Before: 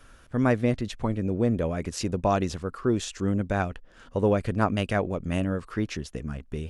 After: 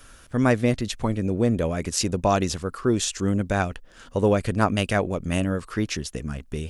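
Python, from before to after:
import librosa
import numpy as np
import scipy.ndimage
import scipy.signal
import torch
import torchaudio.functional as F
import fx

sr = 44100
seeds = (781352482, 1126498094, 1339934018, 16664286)

y = fx.high_shelf(x, sr, hz=3900.0, db=10.0)
y = F.gain(torch.from_numpy(y), 2.5).numpy()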